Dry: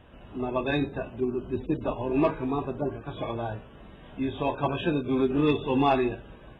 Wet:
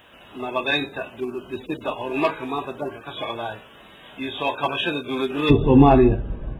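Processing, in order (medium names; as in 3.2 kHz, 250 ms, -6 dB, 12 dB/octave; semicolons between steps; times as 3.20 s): tilt EQ +4 dB/octave, from 5.49 s -3.5 dB/octave; trim +5.5 dB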